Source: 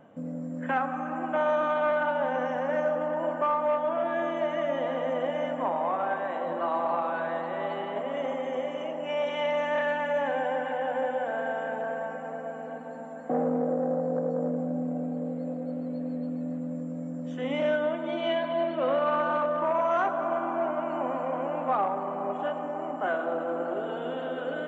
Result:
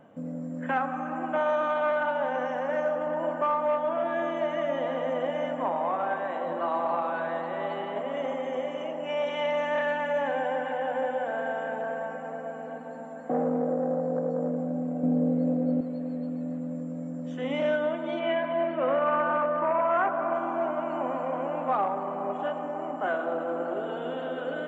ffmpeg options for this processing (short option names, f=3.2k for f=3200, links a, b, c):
-filter_complex "[0:a]asettb=1/sr,asplit=3[a][b][c];[a]atrim=end=1.394[d];[b]atrim=start=1.39:end=3.07,asetpts=PTS-STARTPTS,afade=t=in:d=0.004:c=qsin,afade=t=out:st=1.676:d=0.004:c=qsin,highpass=f=220:p=1[e];[c]atrim=start=3.066[f];[d][e]acrossfade=d=0.004:c1=hsin:c2=qsin[g];[g][f]acrossfade=d=0.004:c1=qsin:c2=hsin,asettb=1/sr,asplit=3[h][i][j];[h]atrim=end=15.034[k];[i]atrim=start=15.03:end=15.81,asetpts=PTS-STARTPTS,afade=t=in:d=0.004:c=qsin,afade=t=out:st=0.776:d=0.004:c=qsin,equalizer=f=230:t=o:w=2.8:g=8.5[l];[j]atrim=start=15.806[m];[k][l]acrossfade=d=0.004:c1=hsin:c2=qsin[n];[n][m]acrossfade=d=0.004:c1=qsin:c2=hsin,asettb=1/sr,asplit=3[o][p][q];[o]atrim=end=18.194[r];[p]atrim=start=18.19:end=20.35,asetpts=PTS-STARTPTS,afade=t=in:d=0.004:c=qsin,afade=t=out:st=2.156:d=0.004:c=qsin,highshelf=f=3.2k:t=q:w=1.5:g=-11.5[s];[q]atrim=start=20.346[t];[r][s]acrossfade=d=0.004:c1=hsin:c2=qsin[u];[u][t]acrossfade=d=0.004:c1=qsin:c2=hsin"